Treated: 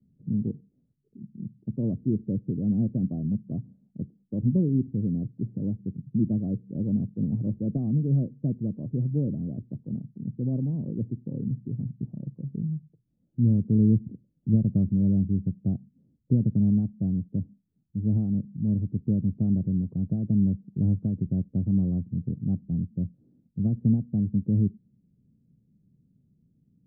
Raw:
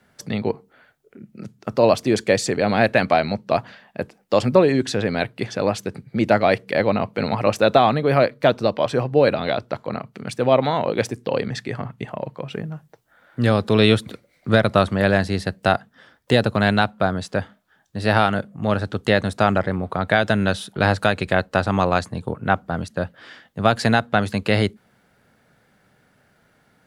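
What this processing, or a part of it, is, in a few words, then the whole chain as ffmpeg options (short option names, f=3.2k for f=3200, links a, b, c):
the neighbour's flat through the wall: -af "lowpass=f=270:w=0.5412,lowpass=f=270:w=1.3066,equalizer=f=160:t=o:w=0.91:g=5,volume=-3dB"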